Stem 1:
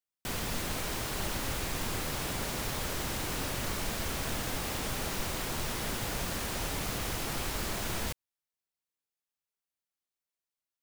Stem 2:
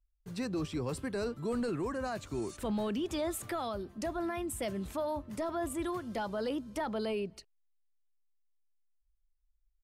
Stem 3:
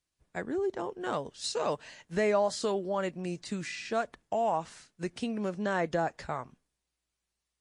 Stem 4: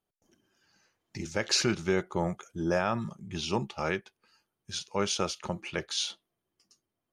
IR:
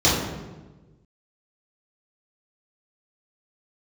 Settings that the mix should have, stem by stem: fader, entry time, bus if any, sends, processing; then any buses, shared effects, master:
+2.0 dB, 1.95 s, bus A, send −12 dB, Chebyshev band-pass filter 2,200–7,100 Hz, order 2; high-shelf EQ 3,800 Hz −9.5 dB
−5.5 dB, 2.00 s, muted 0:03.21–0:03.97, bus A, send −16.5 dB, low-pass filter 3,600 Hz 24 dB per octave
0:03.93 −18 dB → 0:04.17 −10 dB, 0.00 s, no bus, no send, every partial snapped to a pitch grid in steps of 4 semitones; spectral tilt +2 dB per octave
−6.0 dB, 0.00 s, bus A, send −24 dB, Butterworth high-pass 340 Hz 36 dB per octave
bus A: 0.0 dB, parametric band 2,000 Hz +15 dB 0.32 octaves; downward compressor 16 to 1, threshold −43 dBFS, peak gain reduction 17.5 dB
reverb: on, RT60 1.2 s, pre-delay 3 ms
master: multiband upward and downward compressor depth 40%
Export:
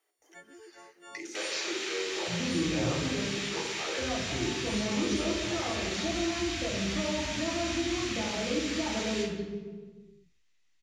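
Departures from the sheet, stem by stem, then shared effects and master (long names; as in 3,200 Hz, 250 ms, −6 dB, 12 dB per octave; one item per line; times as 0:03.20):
stem 1: entry 1.95 s → 1.10 s
stem 3 −18.0 dB → −28.0 dB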